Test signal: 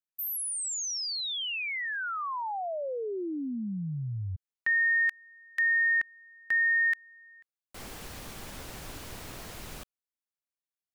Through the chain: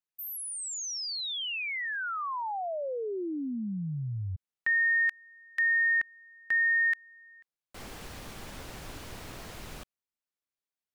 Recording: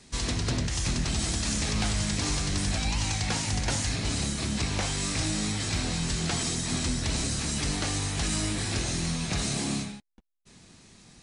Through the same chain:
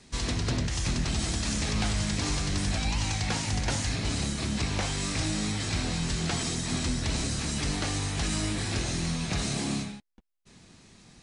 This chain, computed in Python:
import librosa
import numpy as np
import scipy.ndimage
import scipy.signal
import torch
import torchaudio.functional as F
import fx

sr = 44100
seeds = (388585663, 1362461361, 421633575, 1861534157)

y = fx.high_shelf(x, sr, hz=7200.0, db=-6.0)